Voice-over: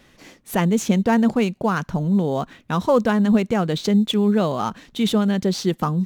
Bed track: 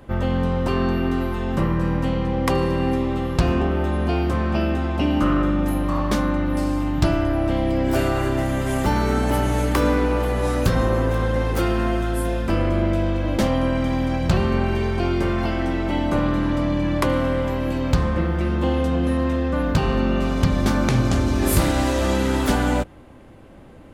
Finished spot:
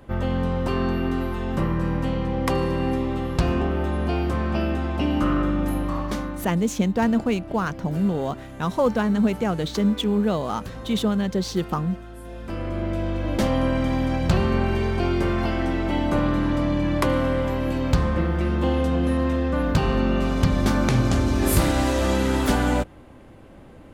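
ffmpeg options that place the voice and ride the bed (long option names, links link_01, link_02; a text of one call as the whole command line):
ffmpeg -i stem1.wav -i stem2.wav -filter_complex "[0:a]adelay=5900,volume=-3.5dB[link_01];[1:a]volume=13.5dB,afade=type=out:start_time=5.77:duration=0.8:silence=0.188365,afade=type=in:start_time=12.21:duration=1.38:silence=0.158489[link_02];[link_01][link_02]amix=inputs=2:normalize=0" out.wav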